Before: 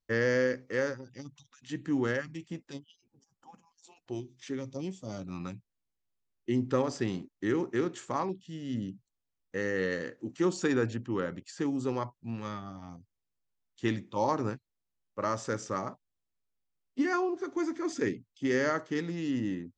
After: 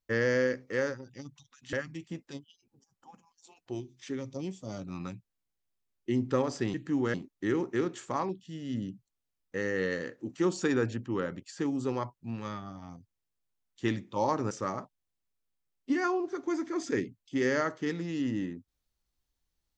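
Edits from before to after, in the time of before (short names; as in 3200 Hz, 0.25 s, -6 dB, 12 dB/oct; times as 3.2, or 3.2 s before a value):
1.73–2.13 move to 7.14
14.51–15.6 cut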